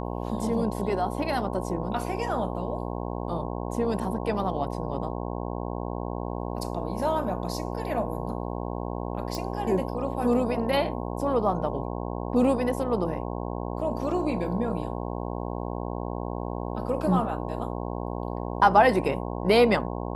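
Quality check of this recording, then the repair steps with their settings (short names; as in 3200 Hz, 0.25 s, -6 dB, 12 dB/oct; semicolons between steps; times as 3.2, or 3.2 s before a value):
buzz 60 Hz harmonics 18 -32 dBFS
9.35 pop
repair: de-click; de-hum 60 Hz, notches 18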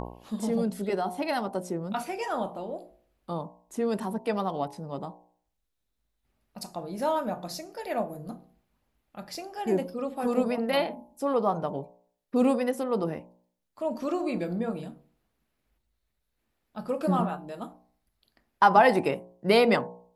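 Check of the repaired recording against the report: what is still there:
none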